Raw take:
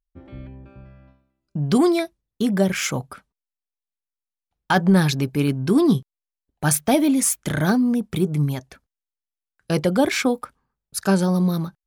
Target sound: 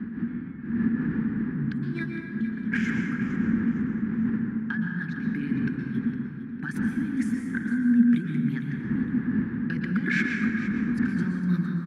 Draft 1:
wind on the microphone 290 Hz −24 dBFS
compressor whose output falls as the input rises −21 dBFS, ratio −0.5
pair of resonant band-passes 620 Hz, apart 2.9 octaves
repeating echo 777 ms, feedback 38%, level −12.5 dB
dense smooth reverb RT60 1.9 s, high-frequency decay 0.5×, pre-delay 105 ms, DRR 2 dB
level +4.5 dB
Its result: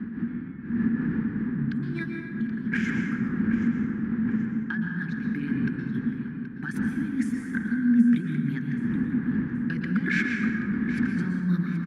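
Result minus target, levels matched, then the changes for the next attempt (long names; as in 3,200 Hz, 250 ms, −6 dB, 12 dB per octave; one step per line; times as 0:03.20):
echo 318 ms late
change: repeating echo 459 ms, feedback 38%, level −12.5 dB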